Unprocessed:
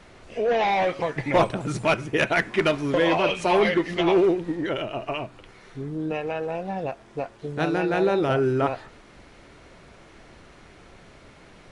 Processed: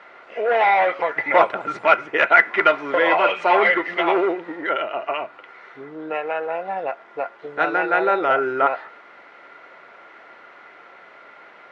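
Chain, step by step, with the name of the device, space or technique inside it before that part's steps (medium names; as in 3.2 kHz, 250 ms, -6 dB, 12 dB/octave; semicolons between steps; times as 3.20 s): tin-can telephone (band-pass 630–2100 Hz; small resonant body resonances 1.4/2 kHz, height 11 dB, ringing for 45 ms); trim +7.5 dB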